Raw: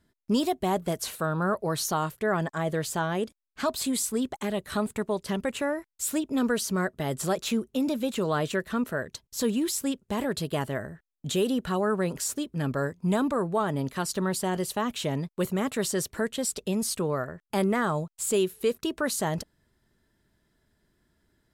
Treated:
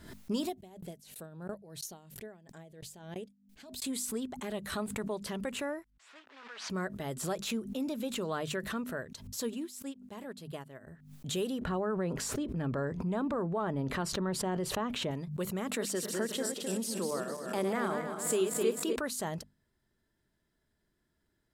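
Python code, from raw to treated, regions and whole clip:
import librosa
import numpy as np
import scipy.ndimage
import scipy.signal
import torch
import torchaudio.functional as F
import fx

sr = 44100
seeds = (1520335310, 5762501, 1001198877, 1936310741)

y = fx.chain(x, sr, fx.peak_eq(hz=1200.0, db=-13.5, octaves=0.83),
    fx.tremolo_decay(direction='decaying', hz=3.0, depth_db=32), at=(0.49, 3.82))
y = fx.chain(y, sr, fx.block_float(bits=3),
    fx.highpass(hz=1400.0, slope=12),
    fx.spacing_loss(db_at_10k=39), at=(5.9, 6.7))
y = fx.chain(y, sr, fx.highpass(hz=96.0, slope=12),
    fx.upward_expand(threshold_db=-39.0, expansion=2.5), at=(9.27, 10.87))
y = fx.chain(y, sr, fx.lowpass(hz=1500.0, slope=6),
    fx.env_flatten(amount_pct=70), at=(11.61, 15.11))
y = fx.chain(y, sr, fx.reverse_delay_fb(ms=130, feedback_pct=66, wet_db=-5.5),
    fx.highpass(hz=200.0, slope=24),
    fx.low_shelf(hz=450.0, db=3.0), at=(15.68, 18.96))
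y = fx.hum_notches(y, sr, base_hz=50, count=5)
y = fx.pre_swell(y, sr, db_per_s=75.0)
y = F.gain(torch.from_numpy(y), -8.0).numpy()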